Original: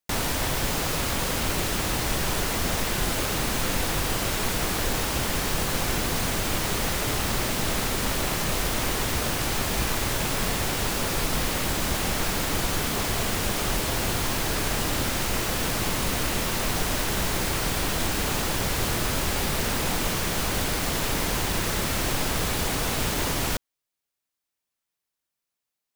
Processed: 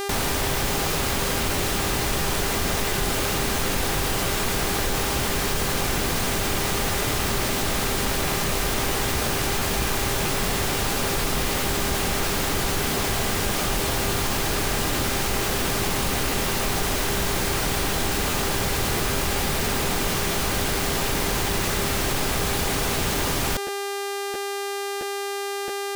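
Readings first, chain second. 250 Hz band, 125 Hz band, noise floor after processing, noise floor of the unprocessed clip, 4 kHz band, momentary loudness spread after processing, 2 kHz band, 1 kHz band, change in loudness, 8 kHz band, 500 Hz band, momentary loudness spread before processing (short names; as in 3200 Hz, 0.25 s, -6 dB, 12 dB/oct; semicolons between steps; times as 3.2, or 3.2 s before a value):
+2.0 dB, +1.5 dB, -29 dBFS, -85 dBFS, +2.5 dB, 0 LU, +2.5 dB, +3.0 dB, +2.0 dB, +2.0 dB, +4.0 dB, 0 LU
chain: buzz 400 Hz, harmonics 36, -36 dBFS -5 dB/oct; crackling interface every 0.67 s, samples 512, repeat, from 0.88; fast leveller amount 50%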